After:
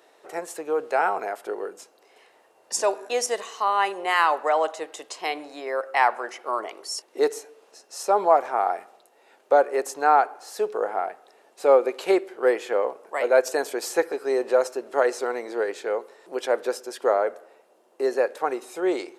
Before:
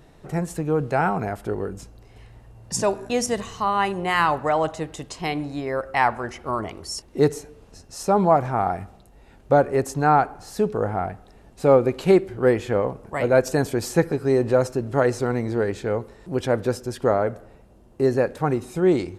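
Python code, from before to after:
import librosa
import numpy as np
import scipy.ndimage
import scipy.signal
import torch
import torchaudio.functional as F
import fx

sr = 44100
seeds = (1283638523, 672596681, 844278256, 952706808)

y = scipy.signal.sosfilt(scipy.signal.butter(4, 410.0, 'highpass', fs=sr, output='sos'), x)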